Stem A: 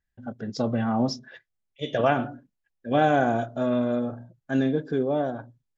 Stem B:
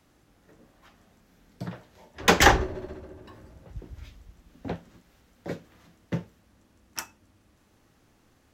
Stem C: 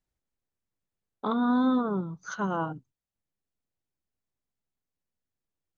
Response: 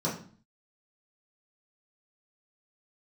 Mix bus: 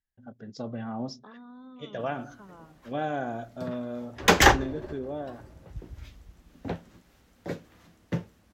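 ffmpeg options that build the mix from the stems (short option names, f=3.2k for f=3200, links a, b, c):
-filter_complex "[0:a]volume=-10dB,asplit=2[a][b];[1:a]adelay=2000,volume=0dB[c];[2:a]acrossover=split=140[d][e];[e]acompressor=threshold=-31dB:ratio=6[f];[d][f]amix=inputs=2:normalize=0,volume=-16.5dB[g];[b]apad=whole_len=464645[h];[c][h]sidechaincompress=threshold=-34dB:ratio=8:attack=5.4:release=149[i];[a][i][g]amix=inputs=3:normalize=0"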